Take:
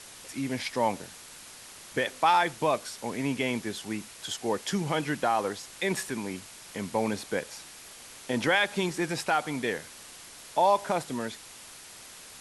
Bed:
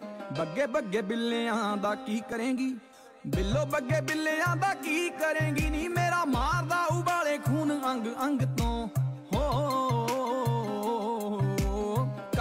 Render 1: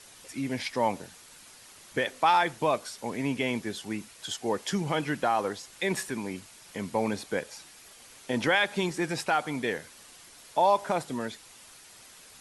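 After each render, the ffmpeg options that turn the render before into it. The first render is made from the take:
-af "afftdn=nr=6:nf=-48"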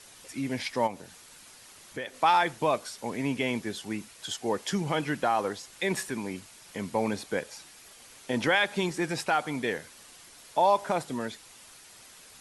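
-filter_complex "[0:a]asplit=3[s0][s1][s2];[s0]afade=t=out:st=0.86:d=0.02[s3];[s1]acompressor=threshold=0.00562:ratio=1.5:attack=3.2:release=140:knee=1:detection=peak,afade=t=in:st=0.86:d=0.02,afade=t=out:st=2.13:d=0.02[s4];[s2]afade=t=in:st=2.13:d=0.02[s5];[s3][s4][s5]amix=inputs=3:normalize=0"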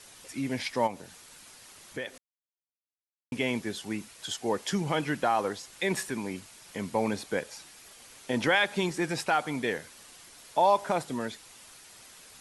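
-filter_complex "[0:a]asplit=3[s0][s1][s2];[s0]atrim=end=2.18,asetpts=PTS-STARTPTS,afade=t=out:st=2.176:d=0.004:c=hsin[s3];[s1]atrim=start=2.18:end=3.32,asetpts=PTS-STARTPTS,volume=0[s4];[s2]atrim=start=3.32,asetpts=PTS-STARTPTS,afade=t=in:d=0.004:c=hsin[s5];[s3][s4][s5]concat=n=3:v=0:a=1"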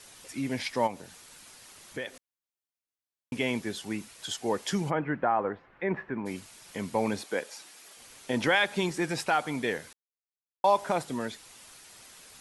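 -filter_complex "[0:a]asplit=3[s0][s1][s2];[s0]afade=t=out:st=4.89:d=0.02[s3];[s1]lowpass=f=1900:w=0.5412,lowpass=f=1900:w=1.3066,afade=t=in:st=4.89:d=0.02,afade=t=out:st=6.25:d=0.02[s4];[s2]afade=t=in:st=6.25:d=0.02[s5];[s3][s4][s5]amix=inputs=3:normalize=0,asettb=1/sr,asplit=3[s6][s7][s8];[s6]atrim=end=7.234[s9];[s7]atrim=start=7.23:end=7.97,asetpts=PTS-STARTPTS,afade=t=in:d=0.004:c=qsin,afade=t=out:st=0.736:d=0.004:c=qsin,highpass=260[s10];[s8]atrim=start=7.966[s11];[s9][s10]acrossfade=d=0.004:c1=hsin:c2=qsin[s12];[s12][s11]acrossfade=d=0.004:c1=qsin:c2=hsin,asplit=3[s13][s14][s15];[s13]atrim=end=9.93,asetpts=PTS-STARTPTS,afade=t=out:st=9.926:d=0.004:c=hsin[s16];[s14]atrim=start=9.93:end=10.64,asetpts=PTS-STARTPTS,volume=0[s17];[s15]atrim=start=10.64,asetpts=PTS-STARTPTS,afade=t=in:d=0.004:c=hsin[s18];[s16][s17][s18]concat=n=3:v=0:a=1"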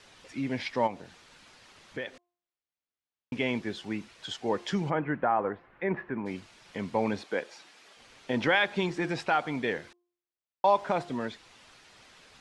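-af "lowpass=4100,bandreject=f=351:t=h:w=4,bandreject=f=702:t=h:w=4,bandreject=f=1053:t=h:w=4"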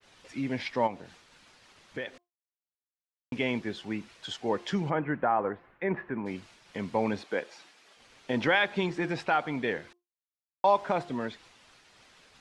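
-af "agate=range=0.0224:threshold=0.00251:ratio=3:detection=peak,adynamicequalizer=threshold=0.00398:dfrequency=4100:dqfactor=0.7:tfrequency=4100:tqfactor=0.7:attack=5:release=100:ratio=0.375:range=2.5:mode=cutabove:tftype=highshelf"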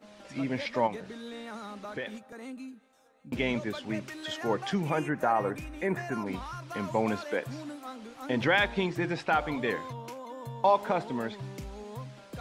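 -filter_complex "[1:a]volume=0.237[s0];[0:a][s0]amix=inputs=2:normalize=0"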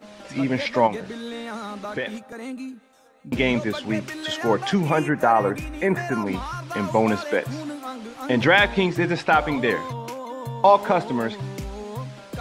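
-af "volume=2.66"

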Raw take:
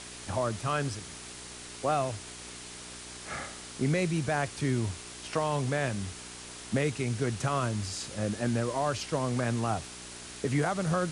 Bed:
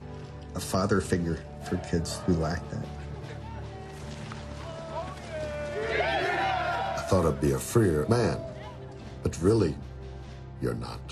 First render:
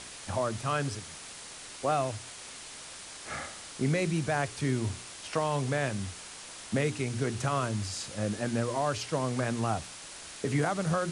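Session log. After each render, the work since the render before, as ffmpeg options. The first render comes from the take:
-af "bandreject=f=60:t=h:w=4,bandreject=f=120:t=h:w=4,bandreject=f=180:t=h:w=4,bandreject=f=240:t=h:w=4,bandreject=f=300:t=h:w=4,bandreject=f=360:t=h:w=4,bandreject=f=420:t=h:w=4"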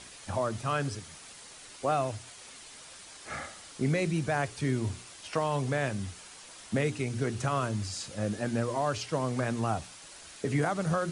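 -af "afftdn=nr=6:nf=-46"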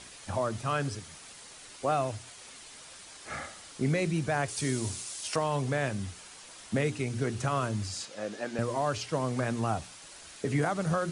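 -filter_complex "[0:a]asettb=1/sr,asplit=3[s0][s1][s2];[s0]atrim=end=4.484[s3];[s1]atrim=start=4.48:end=5.36,asetpts=PTS-STARTPTS,afade=t=in:d=0.004:c=qsin,afade=t=out:st=0.876:d=0.004:c=qsin,bass=f=250:g=-3,treble=f=4000:g=12[s4];[s2]atrim=start=5.356[s5];[s3][s4]acrossfade=d=0.004:c1=hsin:c2=qsin[s6];[s6][s5]acrossfade=d=0.004:c1=qsin:c2=hsin,asettb=1/sr,asplit=3[s7][s8][s9];[s7]atrim=end=8.054[s10];[s8]atrim=start=8.05:end=8.59,asetpts=PTS-STARTPTS,afade=t=in:d=0.004:c=qsin,afade=t=out:st=0.536:d=0.004:c=qsin,highpass=350,lowpass=6900[s11];[s9]atrim=start=8.586[s12];[s10][s11]acrossfade=d=0.004:c1=hsin:c2=qsin[s13];[s13][s12]acrossfade=d=0.004:c1=qsin:c2=hsin"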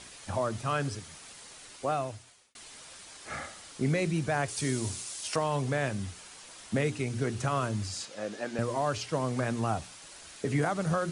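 -filter_complex "[0:a]asplit=2[s0][s1];[s0]atrim=end=2.55,asetpts=PTS-STARTPTS,afade=t=out:st=1.45:d=1.1:c=qsin[s2];[s1]atrim=start=2.55,asetpts=PTS-STARTPTS,afade=t=in:d=0.004:c=hsin[s3];[s2][s3]concat=n=2:v=0:a=1"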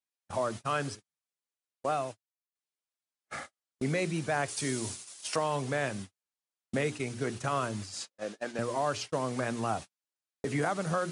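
-af "highpass=f=210:p=1,agate=range=0.00355:threshold=0.0126:ratio=16:detection=peak"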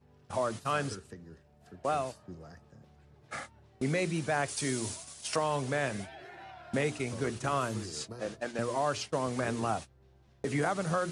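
-filter_complex "[1:a]volume=0.0891[s0];[0:a][s0]amix=inputs=2:normalize=0"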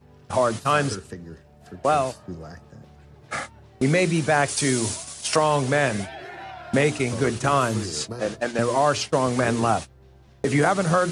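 -af "volume=3.35"

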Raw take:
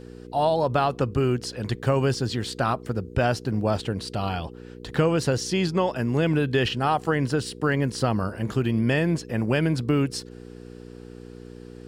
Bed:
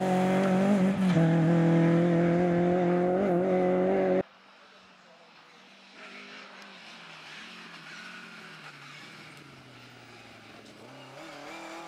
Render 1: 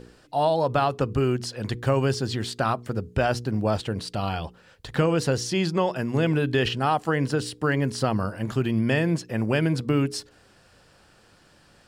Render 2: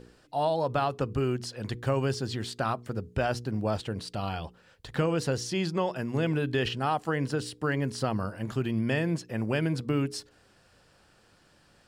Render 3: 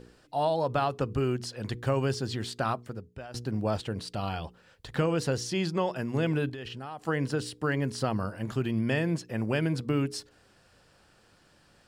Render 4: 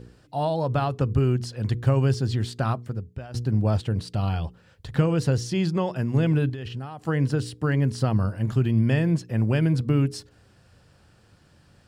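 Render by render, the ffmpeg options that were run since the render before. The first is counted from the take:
-af "bandreject=f=60:t=h:w=4,bandreject=f=120:t=h:w=4,bandreject=f=180:t=h:w=4,bandreject=f=240:t=h:w=4,bandreject=f=300:t=h:w=4,bandreject=f=360:t=h:w=4,bandreject=f=420:t=h:w=4,bandreject=f=480:t=h:w=4"
-af "volume=0.562"
-filter_complex "[0:a]asettb=1/sr,asplit=3[s0][s1][s2];[s0]atrim=end=6.494[s3];[s1]atrim=start=6.49:end=7.07,asetpts=PTS-STARTPTS,afade=t=in:d=0.004:c=qsin,afade=t=out:st=0.576:d=0.004:c=qsin,acompressor=threshold=0.0141:ratio=5:attack=3.2:release=140:knee=1:detection=peak[s4];[s2]atrim=start=7.066[s5];[s3][s4]acrossfade=d=0.004:c1=hsin:c2=qsin[s6];[s6][s5]acrossfade=d=0.004:c1=qsin:c2=hsin,asplit=2[s7][s8];[s7]atrim=end=3.34,asetpts=PTS-STARTPTS,afade=t=out:st=2.75:d=0.59:c=qua:silence=0.149624[s9];[s8]atrim=start=3.34,asetpts=PTS-STARTPTS,afade=t=in:d=0.004:c=hsin:silence=0.149624[s10];[s9][s10]concat=n=2:v=0:a=1"
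-af "equalizer=f=96:t=o:w=2.2:g=12"

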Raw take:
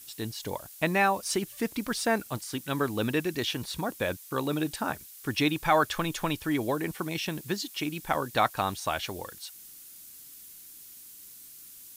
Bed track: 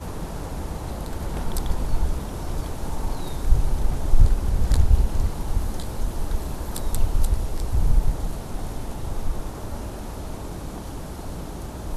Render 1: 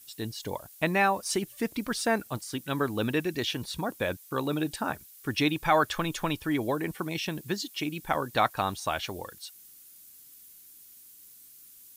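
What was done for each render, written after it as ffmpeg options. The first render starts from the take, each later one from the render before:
-af "afftdn=nr=6:nf=-49"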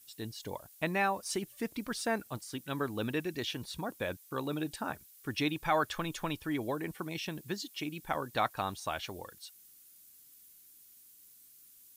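-af "volume=0.501"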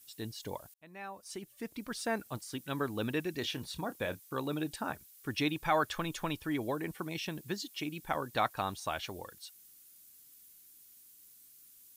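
-filter_complex "[0:a]asettb=1/sr,asplit=3[s0][s1][s2];[s0]atrim=end=3.384[s3];[s1]atrim=start=3.38:end=4.29,asetpts=PTS-STARTPTS,afade=t=in:d=0.004:c=qsin,afade=t=out:st=0.906:d=0.004:c=qsin,asplit=2[s4][s5];[s5]adelay=29,volume=0.224[s6];[s4][s6]amix=inputs=2:normalize=0,atrim=end_sample=40131[s7];[s2]atrim=start=4.286[s8];[s3][s7]acrossfade=d=0.004:c1=hsin:c2=qsin[s9];[s9][s8]acrossfade=d=0.004:c1=qsin:c2=hsin,asplit=2[s10][s11];[s10]atrim=end=0.74,asetpts=PTS-STARTPTS,afade=t=out:st=0.736:d=0.004:c=hsin[s12];[s11]atrim=start=0.74,asetpts=PTS-STARTPTS,afade=t=in:d=1.63[s13];[s12][s13]concat=n=2:v=0:a=1"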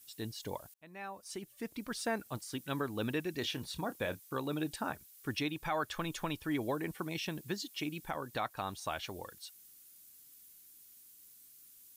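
-af "alimiter=limit=0.0631:level=0:latency=1:release=311"

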